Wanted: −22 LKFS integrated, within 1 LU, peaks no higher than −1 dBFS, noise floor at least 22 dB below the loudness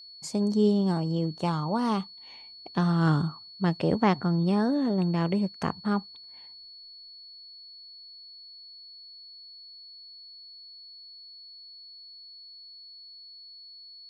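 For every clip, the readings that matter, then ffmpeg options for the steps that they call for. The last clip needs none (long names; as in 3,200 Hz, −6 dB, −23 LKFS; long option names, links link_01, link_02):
interfering tone 4,400 Hz; level of the tone −45 dBFS; integrated loudness −27.0 LKFS; sample peak −12.5 dBFS; target loudness −22.0 LKFS
→ -af "bandreject=frequency=4400:width=30"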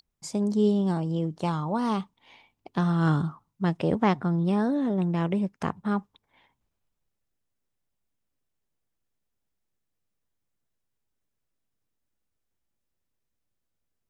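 interfering tone none found; integrated loudness −27.0 LKFS; sample peak −12.5 dBFS; target loudness −22.0 LKFS
→ -af "volume=5dB"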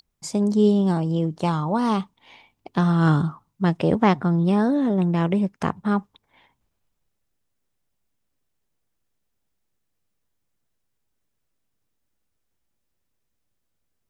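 integrated loudness −22.0 LKFS; sample peak −7.5 dBFS; background noise floor −75 dBFS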